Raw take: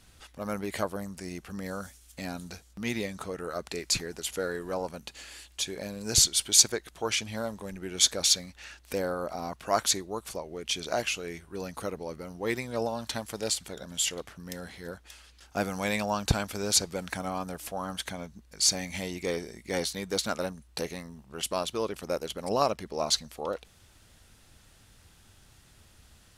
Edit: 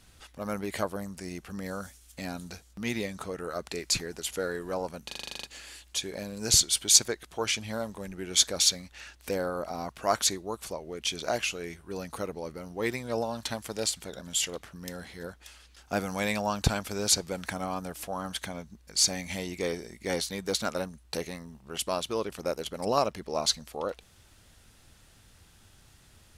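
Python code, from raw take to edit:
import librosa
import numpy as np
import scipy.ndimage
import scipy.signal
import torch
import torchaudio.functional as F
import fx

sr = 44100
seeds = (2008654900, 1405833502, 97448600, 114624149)

y = fx.edit(x, sr, fx.stutter(start_s=5.07, slice_s=0.04, count=10), tone=tone)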